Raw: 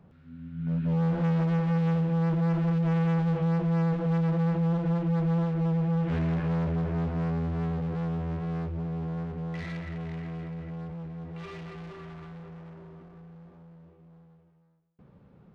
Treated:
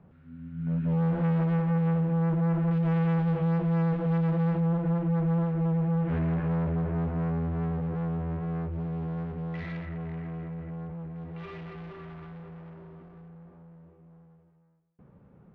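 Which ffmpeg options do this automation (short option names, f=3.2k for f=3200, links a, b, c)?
-af "asetnsamples=n=441:p=0,asendcmd='1.62 lowpass f 2000;2.71 lowpass f 3300;4.6 lowpass f 2100;8.72 lowpass f 3200;9.86 lowpass f 2000;11.16 lowpass f 3200;13.28 lowpass f 2200',lowpass=2.6k"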